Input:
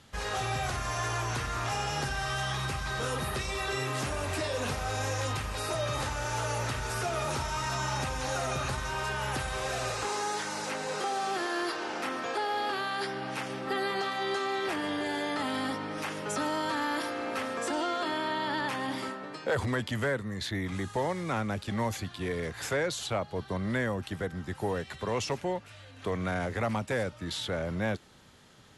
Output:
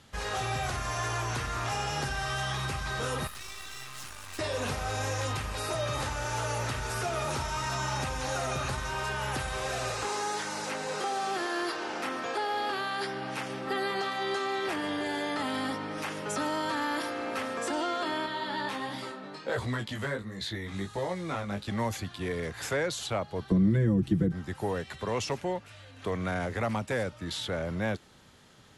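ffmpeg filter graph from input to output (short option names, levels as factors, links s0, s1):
-filter_complex "[0:a]asettb=1/sr,asplit=3[s0][s1][s2];[s0]atrim=end=3.274[s3];[s1]atrim=start=3.27:end=4.39,asetpts=PTS-STARTPTS,afade=t=in:d=0.004:c=qsin,afade=t=out:st=1.116:d=0.004:c=qsin,lowshelf=f=780:t=q:w=1.5:g=-11,acrossover=split=230|3000[s4][s5][s6];[s5]acompressor=threshold=0.00891:ratio=6:attack=3.2:release=140:knee=2.83:detection=peak[s7];[s4][s7][s6]amix=inputs=3:normalize=0,aeval=exprs='max(val(0),0)':c=same[s8];[s2]atrim=start=4.386[s9];[s3][s8]acrossfade=d=0.004:c1=hsin:c2=qsin[s10];[s10][s9]acrossfade=d=0.004:c1=qsin:c2=hsin,asettb=1/sr,asplit=3[s11][s12][s13];[s11]atrim=end=18.264[s14];[s12]atrim=start=18.26:end=21.67,asetpts=PTS-STARTPTS,afade=t=in:d=0.004:c=qsin,afade=t=out:st=3.406:d=0.004:c=qsin,flanger=delay=16.5:depth=3.9:speed=1.4,equalizer=f=3900:w=4.7:g=6,asplit=2[s15][s16];[s16]adelay=15,volume=0.282[s17];[s15][s17]amix=inputs=2:normalize=0,atrim=end_sample=150381[s18];[s13]atrim=start=21.666[s19];[s14][s18]acrossfade=d=0.004:c1=hsin:c2=qsin[s20];[s20][s19]acrossfade=d=0.004:c1=qsin:c2=hsin,asettb=1/sr,asplit=3[s21][s22][s23];[s21]atrim=end=23.514[s24];[s22]atrim=start=23.51:end=24.32,asetpts=PTS-STARTPTS,afade=t=in:d=0.004:c=qsin,afade=t=out:st=0.806:d=0.004:c=qsin,lowshelf=f=470:t=q:w=1.5:g=13.5,aecho=1:1:6:0.97,atrim=end_sample=35721,acrossover=split=110|310[s25][s26][s27];[s25]acompressor=threshold=0.0282:ratio=4[s28];[s26]acompressor=threshold=0.0501:ratio=4[s29];[s27]acompressor=threshold=0.0141:ratio=4[s30];[s28][s29][s30]amix=inputs=3:normalize=0[s31];[s23]atrim=start=24.316[s32];[s24][s31]acrossfade=d=0.004:c1=hsin:c2=qsin[s33];[s33][s32]acrossfade=d=0.004:c1=qsin:c2=hsin"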